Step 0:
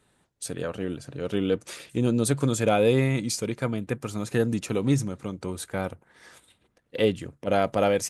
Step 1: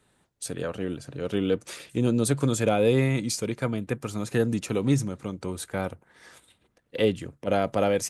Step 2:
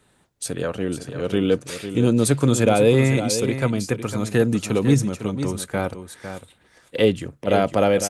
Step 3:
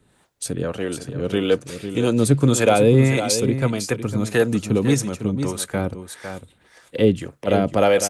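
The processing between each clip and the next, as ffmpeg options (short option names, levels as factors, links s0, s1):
-filter_complex "[0:a]acrossover=split=480[s0][s1];[s1]acompressor=threshold=0.0708:ratio=6[s2];[s0][s2]amix=inputs=2:normalize=0"
-af "aecho=1:1:503:0.316,volume=1.88"
-filter_complex "[0:a]acrossover=split=410[s0][s1];[s0]aeval=exprs='val(0)*(1-0.7/2+0.7/2*cos(2*PI*1.7*n/s))':c=same[s2];[s1]aeval=exprs='val(0)*(1-0.7/2-0.7/2*cos(2*PI*1.7*n/s))':c=same[s3];[s2][s3]amix=inputs=2:normalize=0,volume=1.68"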